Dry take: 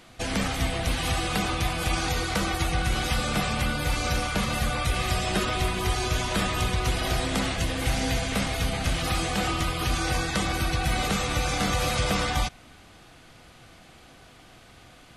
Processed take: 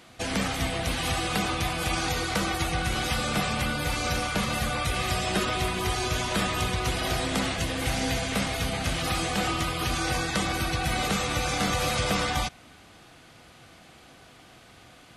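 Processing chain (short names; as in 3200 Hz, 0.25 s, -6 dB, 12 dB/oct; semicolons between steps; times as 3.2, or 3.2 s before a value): HPF 82 Hz 6 dB/oct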